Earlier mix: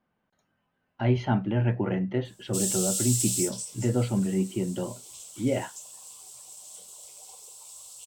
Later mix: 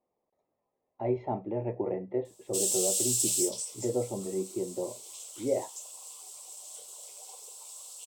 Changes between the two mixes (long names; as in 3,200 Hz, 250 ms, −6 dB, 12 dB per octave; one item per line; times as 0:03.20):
speech: add moving average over 29 samples
master: add low shelf with overshoot 290 Hz −12 dB, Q 1.5